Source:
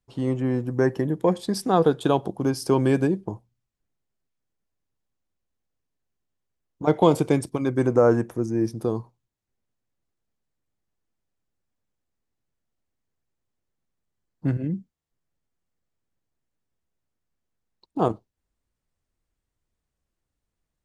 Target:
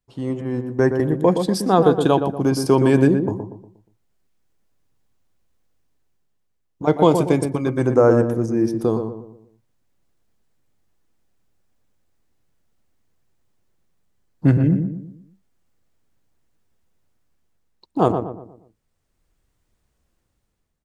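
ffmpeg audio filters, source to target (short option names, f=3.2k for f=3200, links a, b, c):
-filter_complex "[0:a]dynaudnorm=f=300:g=5:m=12dB,asettb=1/sr,asplit=3[a][b][c];[a]atrim=end=0.414[d];[b]atrim=start=0.41:end=1.16,asetpts=PTS-STARTPTS,afade=t=in:d=0.004:c=qsin,afade=t=out:st=0.746:d=0.004:c=qsin,agate=range=-7dB:threshold=-21dB:ratio=16:detection=peak[e];[c]atrim=start=1.156[f];[d][e]acrossfade=d=0.004:c1=hsin:c2=qsin[g];[g][f]acrossfade=d=0.004:c1=qsin:c2=hsin,asplit=2[h][i];[i]adelay=119,lowpass=f=1.3k:p=1,volume=-6dB,asplit=2[j][k];[k]adelay=119,lowpass=f=1.3k:p=1,volume=0.42,asplit=2[l][m];[m]adelay=119,lowpass=f=1.3k:p=1,volume=0.42,asplit=2[n][o];[o]adelay=119,lowpass=f=1.3k:p=1,volume=0.42,asplit=2[p][q];[q]adelay=119,lowpass=f=1.3k:p=1,volume=0.42[r];[h][j][l][n][p][r]amix=inputs=6:normalize=0,volume=-1dB"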